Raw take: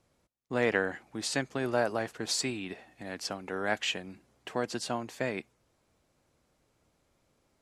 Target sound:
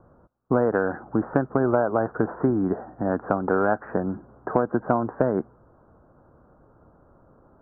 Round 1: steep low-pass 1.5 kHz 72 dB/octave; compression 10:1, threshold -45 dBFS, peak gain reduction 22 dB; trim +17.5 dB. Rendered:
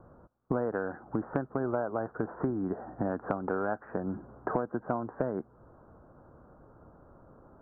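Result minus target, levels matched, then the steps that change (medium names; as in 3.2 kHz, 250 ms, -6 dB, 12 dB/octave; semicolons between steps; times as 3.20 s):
compression: peak gain reduction +10 dB
change: compression 10:1, threshold -34 dBFS, peak gain reduction 12 dB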